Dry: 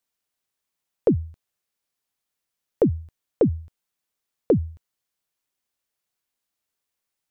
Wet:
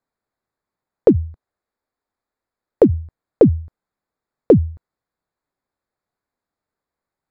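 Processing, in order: local Wiener filter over 15 samples; 1.10–2.94 s: peaking EQ 150 Hz -14 dB 0.34 oct; trim +8 dB

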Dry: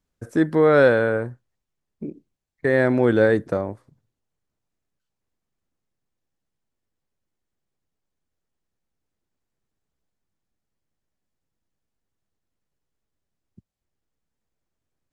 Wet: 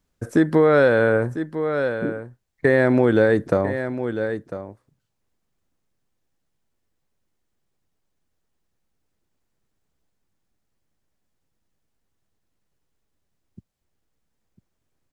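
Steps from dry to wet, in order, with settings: on a send: delay 999 ms -13.5 dB; on the sum: compression, threshold -18 dBFS, peak gain reduction 7 dB; trim +5.5 dB

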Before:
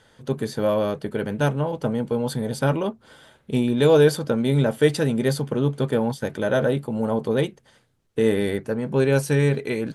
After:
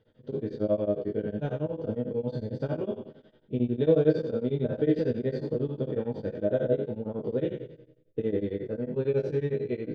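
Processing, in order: spectral sustain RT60 0.80 s; low-pass 4.2 kHz 24 dB/octave; resonant low shelf 700 Hz +10.5 dB, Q 1.5; chord resonator G#2 minor, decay 0.24 s; tremolo of two beating tones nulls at 11 Hz; trim -4.5 dB

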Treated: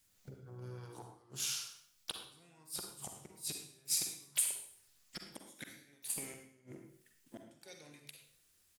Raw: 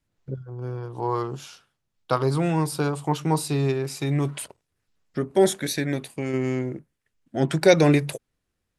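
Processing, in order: inverted gate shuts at -17 dBFS, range -38 dB; compression 16:1, threshold -43 dBFS, peak gain reduction 20 dB; pre-emphasis filter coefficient 0.9; on a send at -3 dB: reverberation RT60 0.65 s, pre-delay 38 ms; on the sum: harmony voices -3 st -16 dB, +7 st -17 dB; trim +14 dB

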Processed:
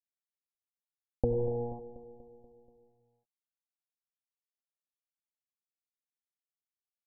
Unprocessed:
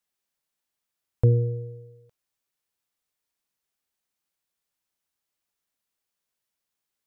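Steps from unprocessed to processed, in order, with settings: local Wiener filter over 25 samples; algorithmic reverb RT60 0.71 s, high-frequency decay 0.55×, pre-delay 50 ms, DRR 4.5 dB; compression 3:1, threshold -23 dBFS, peak gain reduction 6.5 dB; comb 3.8 ms, depth 87%; small samples zeroed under -35 dBFS; steep low-pass 910 Hz 96 dB/octave; peaking EQ 77 Hz -8.5 dB 0.94 oct; on a send: feedback delay 241 ms, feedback 59%, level -15 dB

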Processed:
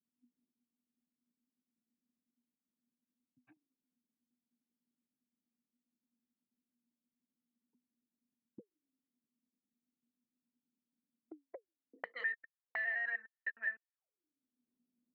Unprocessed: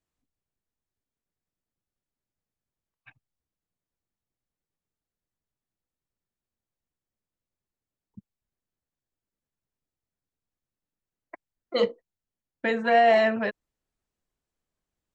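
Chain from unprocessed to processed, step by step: slices played last to first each 102 ms, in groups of 5; auto-wah 240–1800 Hz, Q 21, up, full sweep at -33 dBFS; three bands compressed up and down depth 70%

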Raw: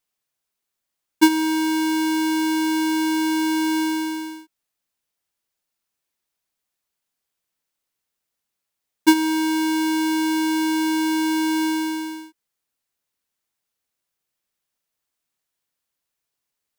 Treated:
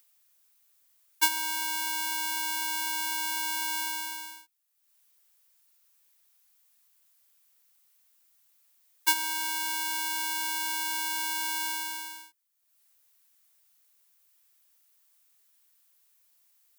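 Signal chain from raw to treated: Bessel high-pass 880 Hz, order 6; treble shelf 9.1 kHz +12 dB; upward compressor, threshold -49 dBFS; trim -5 dB

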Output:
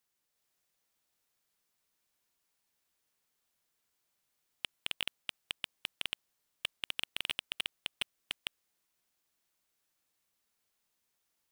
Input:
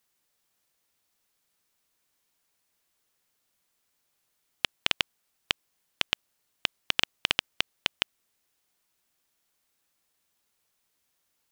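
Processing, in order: chunks repeated in reverse 355 ms, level -2 dB; overload inside the chain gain 11.5 dB; trim -7 dB

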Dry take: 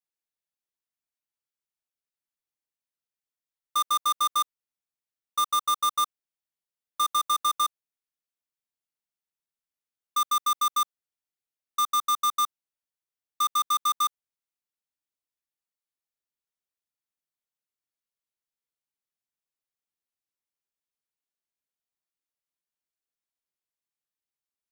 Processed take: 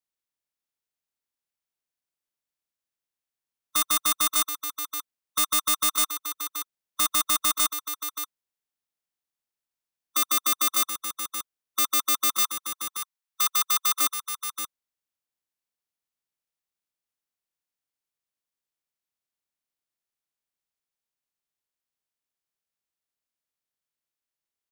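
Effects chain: spectral peaks clipped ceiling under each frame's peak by 23 dB; 12.39–14.01 s: steep high-pass 780 Hz 72 dB/octave; delay 578 ms -9 dB; trim +1.5 dB

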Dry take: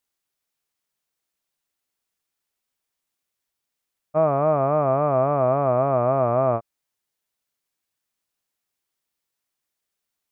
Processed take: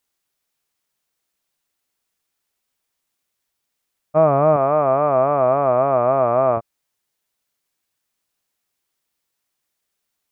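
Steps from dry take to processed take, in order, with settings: 4.56–6.57 s: bass shelf 210 Hz -11.5 dB; trim +5 dB

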